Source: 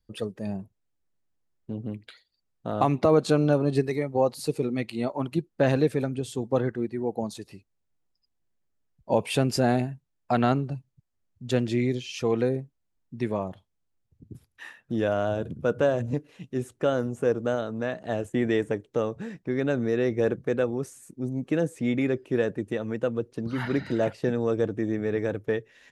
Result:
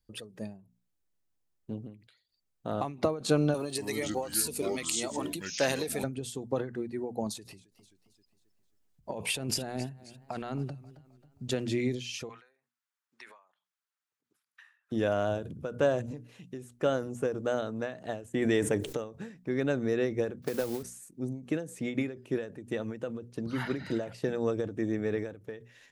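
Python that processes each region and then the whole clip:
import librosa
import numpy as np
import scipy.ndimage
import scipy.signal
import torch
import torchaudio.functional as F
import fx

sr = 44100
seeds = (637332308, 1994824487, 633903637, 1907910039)

y = fx.chain(x, sr, fx.riaa(side='recording'),
    fx.echo_pitch(ms=239, semitones=-5, count=2, db_per_echo=-6.0), at=(3.54, 6.04))
y = fx.chain(y, sr, fx.over_compress(threshold_db=-30.0, ratio=-1.0),
    fx.echo_warbled(ms=266, feedback_pct=43, rate_hz=2.8, cents=116, wet_db=-19), at=(7.26, 11.5))
y = fx.chain(y, sr, fx.highpass_res(hz=1300.0, q=2.1),
    fx.high_shelf(hz=6700.0, db=-6.5), at=(12.29, 14.92))
y = fx.chain(y, sr, fx.high_shelf(hz=5600.0, db=5.5),
    fx.env_flatten(amount_pct=70), at=(18.42, 19.04))
y = fx.chain(y, sr, fx.cvsd(bps=32000),
    fx.mod_noise(seeds[0], snr_db=20),
    fx.band_squash(depth_pct=100), at=(20.42, 20.83))
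y = fx.high_shelf(y, sr, hz=4800.0, db=6.0)
y = fx.hum_notches(y, sr, base_hz=60, count=4)
y = fx.end_taper(y, sr, db_per_s=120.0)
y = y * librosa.db_to_amplitude(-3.0)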